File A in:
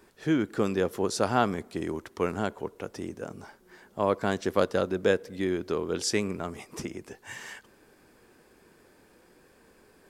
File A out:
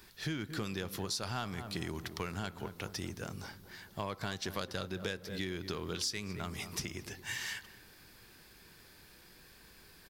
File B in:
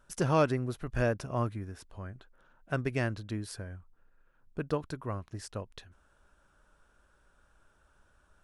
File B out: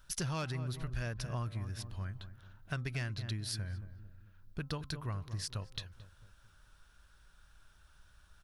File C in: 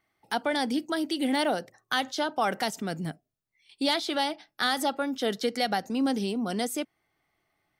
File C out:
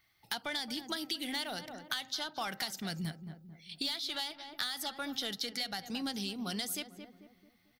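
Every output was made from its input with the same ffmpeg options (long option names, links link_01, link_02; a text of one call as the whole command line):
ffmpeg -i in.wav -filter_complex "[0:a]equalizer=frequency=250:width_type=o:width=1:gain=-6,equalizer=frequency=500:width_type=o:width=1:gain=-6,equalizer=frequency=2000:width_type=o:width=1:gain=4,equalizer=frequency=4000:width_type=o:width=1:gain=7,equalizer=frequency=8000:width_type=o:width=1:gain=-10,asplit=2[link_01][link_02];[link_02]asoftclip=type=tanh:threshold=-24dB,volume=-4dB[link_03];[link_01][link_03]amix=inputs=2:normalize=0,bass=frequency=250:gain=7,treble=frequency=4000:gain=14,asplit=2[link_04][link_05];[link_05]adelay=222,lowpass=frequency=1000:poles=1,volume=-12.5dB,asplit=2[link_06][link_07];[link_07]adelay=222,lowpass=frequency=1000:poles=1,volume=0.46,asplit=2[link_08][link_09];[link_09]adelay=222,lowpass=frequency=1000:poles=1,volume=0.46,asplit=2[link_10][link_11];[link_11]adelay=222,lowpass=frequency=1000:poles=1,volume=0.46,asplit=2[link_12][link_13];[link_13]adelay=222,lowpass=frequency=1000:poles=1,volume=0.46[link_14];[link_06][link_08][link_10][link_12][link_14]amix=inputs=5:normalize=0[link_15];[link_04][link_15]amix=inputs=2:normalize=0,acompressor=threshold=-28dB:ratio=6,bandreject=frequency=261.8:width_type=h:width=4,bandreject=frequency=523.6:width_type=h:width=4,bandreject=frequency=785.4:width_type=h:width=4,bandreject=frequency=1047.2:width_type=h:width=4,bandreject=frequency=1309:width_type=h:width=4,volume=-6dB" out.wav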